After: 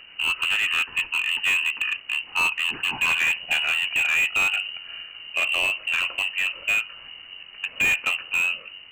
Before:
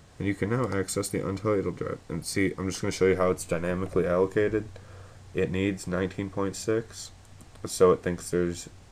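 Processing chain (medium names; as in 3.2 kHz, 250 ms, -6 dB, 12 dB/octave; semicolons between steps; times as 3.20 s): pitch bend over the whole clip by -3 st ending unshifted; frequency inversion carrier 2.9 kHz; slew-rate limiter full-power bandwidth 120 Hz; trim +7.5 dB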